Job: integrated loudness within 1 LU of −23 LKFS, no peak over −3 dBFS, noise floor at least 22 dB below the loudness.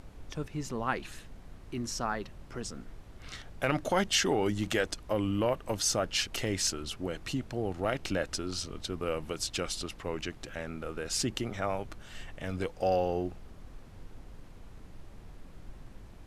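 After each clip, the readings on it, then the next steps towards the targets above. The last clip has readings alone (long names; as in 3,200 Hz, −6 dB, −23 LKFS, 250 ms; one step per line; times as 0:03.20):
background noise floor −51 dBFS; target noise floor −55 dBFS; integrated loudness −33.0 LKFS; sample peak −14.0 dBFS; target loudness −23.0 LKFS
→ noise reduction from a noise print 6 dB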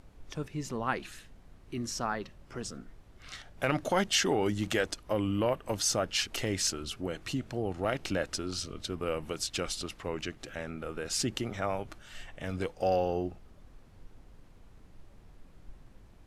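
background noise floor −56 dBFS; integrated loudness −32.5 LKFS; sample peak −13.5 dBFS; target loudness −23.0 LKFS
→ level +9.5 dB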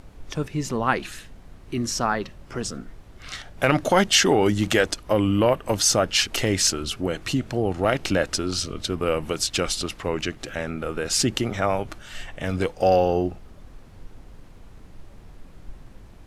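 integrated loudness −23.0 LKFS; sample peak −4.0 dBFS; background noise floor −46 dBFS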